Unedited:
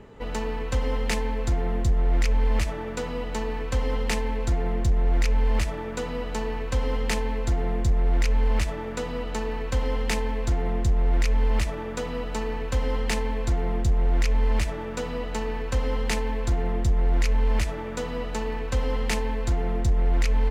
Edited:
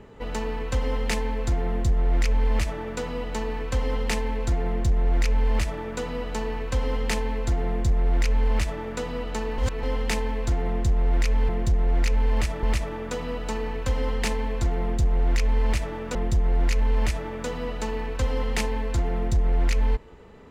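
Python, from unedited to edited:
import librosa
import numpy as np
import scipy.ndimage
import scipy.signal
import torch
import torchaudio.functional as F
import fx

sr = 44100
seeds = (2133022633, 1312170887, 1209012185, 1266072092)

y = fx.edit(x, sr, fx.duplicate(start_s=4.67, length_s=1.14, to_s=11.49),
    fx.reverse_span(start_s=9.58, length_s=0.25),
    fx.cut(start_s=15.01, length_s=1.67), tone=tone)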